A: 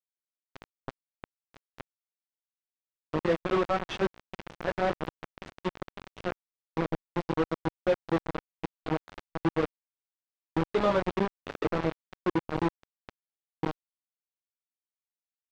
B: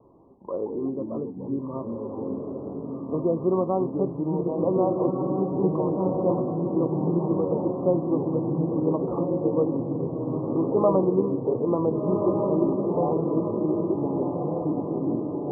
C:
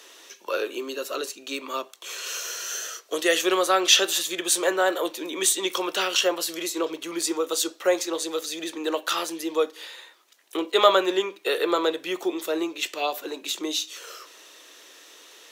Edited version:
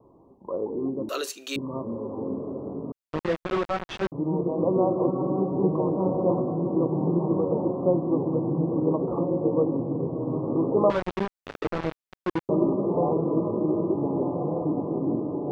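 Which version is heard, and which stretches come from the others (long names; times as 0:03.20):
B
0:01.09–0:01.56: punch in from C
0:02.92–0:04.12: punch in from A
0:10.90–0:12.49: punch in from A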